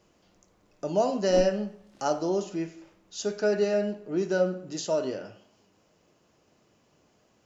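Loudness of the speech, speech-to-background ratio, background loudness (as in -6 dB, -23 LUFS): -28.5 LUFS, 11.5 dB, -40.0 LUFS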